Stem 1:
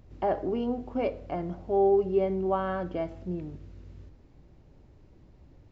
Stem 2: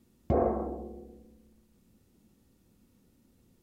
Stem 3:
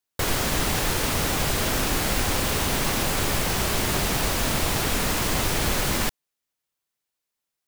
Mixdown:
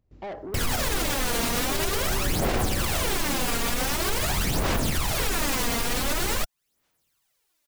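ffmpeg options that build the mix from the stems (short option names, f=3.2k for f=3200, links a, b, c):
-filter_complex "[0:a]agate=range=-15dB:threshold=-49dB:ratio=16:detection=peak,asoftclip=type=tanh:threshold=-29.5dB,volume=-2.5dB[a];[1:a]adelay=2100,volume=0dB[b];[2:a]dynaudnorm=f=100:g=5:m=14dB,alimiter=limit=-11dB:level=0:latency=1:release=282,aphaser=in_gain=1:out_gain=1:delay=4.3:decay=0.61:speed=0.46:type=sinusoidal,adelay=350,volume=-5dB[c];[a][b][c]amix=inputs=3:normalize=0,alimiter=limit=-15.5dB:level=0:latency=1:release=45"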